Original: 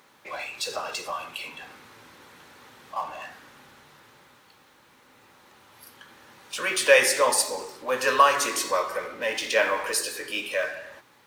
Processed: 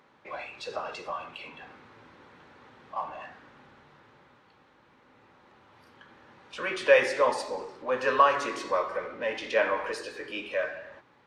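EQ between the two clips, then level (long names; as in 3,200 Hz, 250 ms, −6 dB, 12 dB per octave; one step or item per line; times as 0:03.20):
head-to-tape spacing loss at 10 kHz 26 dB
0.0 dB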